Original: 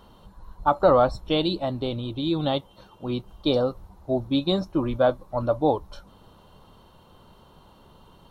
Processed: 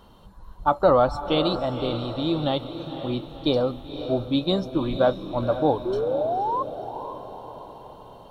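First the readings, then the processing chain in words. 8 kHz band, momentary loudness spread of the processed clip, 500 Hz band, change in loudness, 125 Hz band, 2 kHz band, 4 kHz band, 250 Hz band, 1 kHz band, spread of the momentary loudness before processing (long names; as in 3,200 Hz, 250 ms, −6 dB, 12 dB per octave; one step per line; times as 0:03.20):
can't be measured, 16 LU, +1.0 dB, 0.0 dB, +0.5 dB, +0.5 dB, +0.5 dB, +0.5 dB, +2.0 dB, 10 LU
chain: sound drawn into the spectrogram rise, 0:05.85–0:06.63, 350–1,100 Hz −25 dBFS
feedback delay with all-pass diffusion 514 ms, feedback 52%, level −10 dB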